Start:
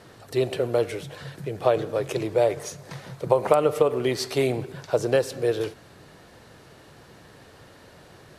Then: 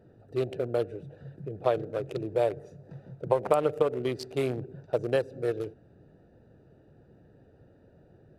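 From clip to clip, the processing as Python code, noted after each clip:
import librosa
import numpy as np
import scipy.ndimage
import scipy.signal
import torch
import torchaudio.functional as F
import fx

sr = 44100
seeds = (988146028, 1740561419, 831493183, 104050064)

y = fx.wiener(x, sr, points=41)
y = F.gain(torch.from_numpy(y), -4.5).numpy()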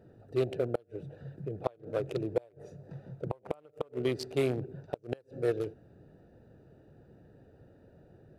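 y = fx.gate_flip(x, sr, shuts_db=-17.0, range_db=-31)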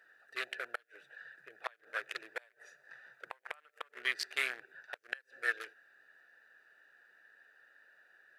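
y = fx.highpass_res(x, sr, hz=1700.0, q=5.2)
y = F.gain(torch.from_numpy(y), 2.5).numpy()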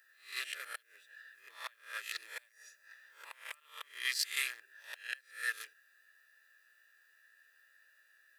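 y = fx.spec_swells(x, sr, rise_s=0.37)
y = scipy.signal.lfilter([1.0, -0.97], [1.0], y)
y = fx.notch_comb(y, sr, f0_hz=750.0)
y = F.gain(torch.from_numpy(y), 8.5).numpy()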